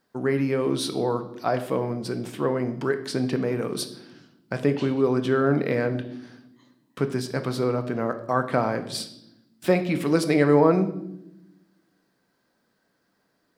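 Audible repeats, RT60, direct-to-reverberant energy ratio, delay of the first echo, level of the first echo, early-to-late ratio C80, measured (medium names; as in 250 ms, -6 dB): no echo, 0.85 s, 8.0 dB, no echo, no echo, 15.0 dB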